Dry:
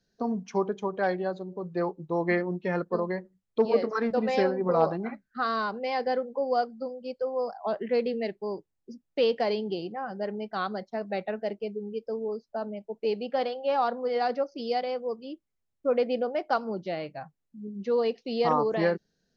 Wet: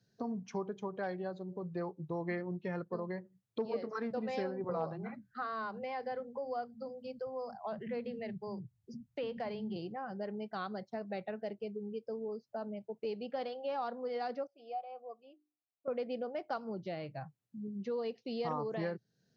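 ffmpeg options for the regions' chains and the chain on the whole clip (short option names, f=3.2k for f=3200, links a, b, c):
-filter_complex "[0:a]asettb=1/sr,asplit=3[a][b][c];[a]atrim=end=4.644[d];[b]atrim=start=4.64:end=9.76,asetpts=PTS-STARTPTS,afade=t=in:d=0.004:c=qsin,afade=t=out:st=5.116:d=0.004:c=qsin,acrossover=split=2700[e][f];[f]acompressor=threshold=-52dB:ratio=4:attack=1:release=60[g];[e][g]amix=inputs=2:normalize=0,asubboost=boost=12:cutoff=110,acrossover=split=260[h][i];[h]adelay=50[j];[j][i]amix=inputs=2:normalize=0,atrim=end_sample=225792[k];[c]atrim=start=9.756[l];[d][k]acrossfade=d=0.004:c1=hsin:c2=qsin[m];[m][l]acrossfade=d=0.004:c1=qsin:c2=hsin,asettb=1/sr,asplit=3[n][o][p];[n]atrim=end=14.474[q];[o]atrim=start=14.47:end=15.88,asetpts=PTS-STARTPTS,afade=t=in:d=0.004:c=qsin,afade=t=out:st=1.406:d=0.004:c=qsin,asplit=3[r][s][t];[r]bandpass=f=730:t=q:w=8,volume=0dB[u];[s]bandpass=f=1.09k:t=q:w=8,volume=-6dB[v];[t]bandpass=f=2.44k:t=q:w=8,volume=-9dB[w];[u][v][w]amix=inputs=3:normalize=0,bandreject=f=50:t=h:w=6,bandreject=f=100:t=h:w=6,bandreject=f=150:t=h:w=6,bandreject=f=200:t=h:w=6,bandreject=f=250:t=h:w=6,bandreject=f=300:t=h:w=6,bandreject=f=350:t=h:w=6[x];[p]atrim=start=15.876[y];[q][x]acrossfade=d=0.004:c1=hsin:c2=qsin[z];[z][y]acrossfade=d=0.004:c1=qsin:c2=hsin,highpass=90,equalizer=f=120:t=o:w=0.68:g=14.5,acompressor=threshold=-40dB:ratio=2,volume=-2dB"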